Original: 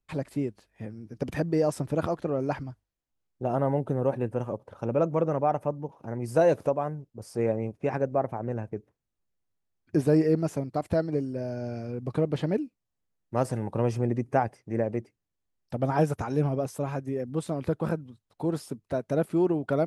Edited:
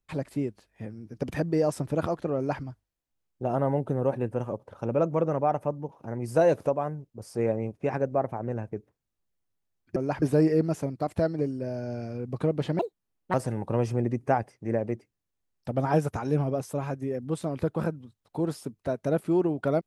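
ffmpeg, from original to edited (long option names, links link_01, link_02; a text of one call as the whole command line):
ffmpeg -i in.wav -filter_complex "[0:a]asplit=5[link_01][link_02][link_03][link_04][link_05];[link_01]atrim=end=9.962[link_06];[link_02]atrim=start=2.358:end=2.622[link_07];[link_03]atrim=start=9.958:end=12.534[link_08];[link_04]atrim=start=12.53:end=13.39,asetpts=PTS-STARTPTS,asetrate=69237,aresample=44100[link_09];[link_05]atrim=start=13.386[link_10];[link_06][link_07]acrossfade=duration=0.004:curve1=hsin:curve2=hsin[link_11];[link_11][link_08]acrossfade=duration=0.004:curve1=hsin:curve2=hsin[link_12];[link_12][link_09]acrossfade=duration=0.004:curve1=hsin:curve2=hsin[link_13];[link_13][link_10]acrossfade=duration=0.004:curve1=hsin:curve2=hsin" out.wav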